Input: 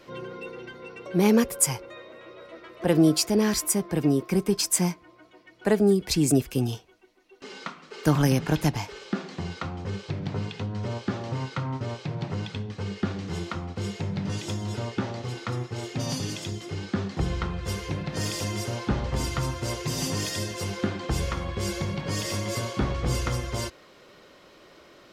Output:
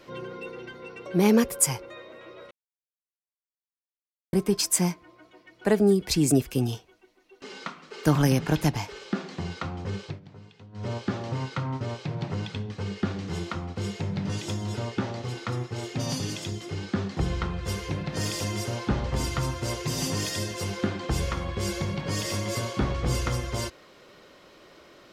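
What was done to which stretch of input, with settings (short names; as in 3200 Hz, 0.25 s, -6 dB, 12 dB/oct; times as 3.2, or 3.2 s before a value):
2.51–4.33 mute
10.04–10.88 dip -17 dB, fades 0.16 s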